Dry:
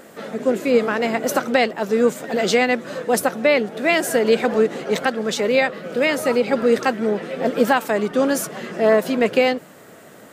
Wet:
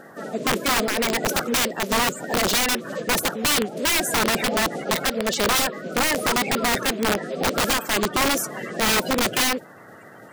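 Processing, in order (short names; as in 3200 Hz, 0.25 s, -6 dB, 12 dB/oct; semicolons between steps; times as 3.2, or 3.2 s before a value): bin magnitudes rounded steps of 30 dB; wrapped overs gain 14.5 dB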